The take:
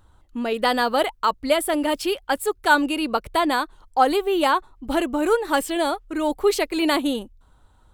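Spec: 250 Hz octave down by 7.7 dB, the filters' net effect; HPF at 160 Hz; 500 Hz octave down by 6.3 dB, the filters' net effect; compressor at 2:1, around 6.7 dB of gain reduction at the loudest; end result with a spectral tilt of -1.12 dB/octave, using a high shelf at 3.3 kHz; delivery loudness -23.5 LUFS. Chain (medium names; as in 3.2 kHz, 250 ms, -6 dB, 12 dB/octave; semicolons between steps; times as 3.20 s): high-pass 160 Hz; peaking EQ 250 Hz -7 dB; peaking EQ 500 Hz -6.5 dB; treble shelf 3.3 kHz +9 dB; compression 2:1, threshold -24 dBFS; trim +3 dB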